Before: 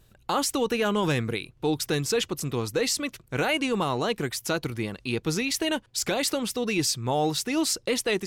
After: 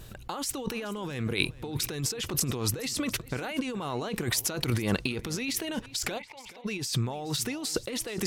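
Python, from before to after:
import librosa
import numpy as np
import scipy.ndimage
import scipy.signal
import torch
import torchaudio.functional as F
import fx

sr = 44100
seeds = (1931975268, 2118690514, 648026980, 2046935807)

y = fx.over_compress(x, sr, threshold_db=-36.0, ratio=-1.0)
y = fx.double_bandpass(y, sr, hz=1400.0, octaves=1.3, at=(6.18, 6.64), fade=0.02)
y = y + 10.0 ** (-19.0 / 20.0) * np.pad(y, (int(427 * sr / 1000.0), 0))[:len(y)]
y = F.gain(torch.from_numpy(y), 4.0).numpy()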